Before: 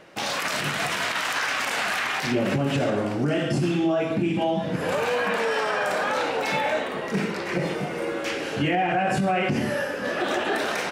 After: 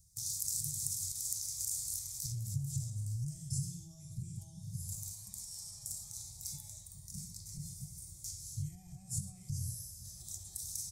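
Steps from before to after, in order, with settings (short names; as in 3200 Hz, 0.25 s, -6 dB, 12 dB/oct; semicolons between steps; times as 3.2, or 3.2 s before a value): inverse Chebyshev band-stop 240–3000 Hz, stop band 50 dB; gain +4 dB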